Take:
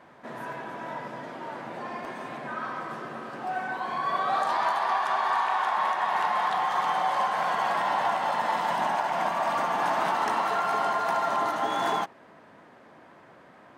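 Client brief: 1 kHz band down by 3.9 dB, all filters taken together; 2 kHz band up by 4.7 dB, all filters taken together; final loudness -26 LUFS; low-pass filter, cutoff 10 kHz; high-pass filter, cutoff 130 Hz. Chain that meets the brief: high-pass 130 Hz; low-pass 10 kHz; peaking EQ 1 kHz -7 dB; peaking EQ 2 kHz +8.5 dB; trim +3 dB

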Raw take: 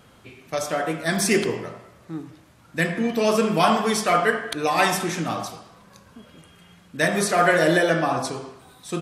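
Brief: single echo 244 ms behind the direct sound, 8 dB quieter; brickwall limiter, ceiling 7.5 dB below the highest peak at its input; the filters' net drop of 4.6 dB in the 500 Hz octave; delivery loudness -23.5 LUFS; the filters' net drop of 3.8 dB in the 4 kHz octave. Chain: peaking EQ 500 Hz -6 dB; peaking EQ 4 kHz -5 dB; peak limiter -15 dBFS; delay 244 ms -8 dB; trim +2 dB

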